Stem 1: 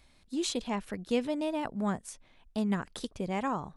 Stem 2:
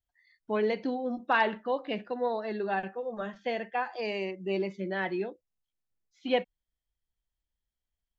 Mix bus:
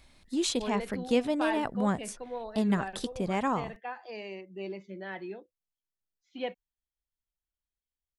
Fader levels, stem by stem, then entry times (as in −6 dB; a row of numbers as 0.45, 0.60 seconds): +3.0, −8.0 decibels; 0.00, 0.10 seconds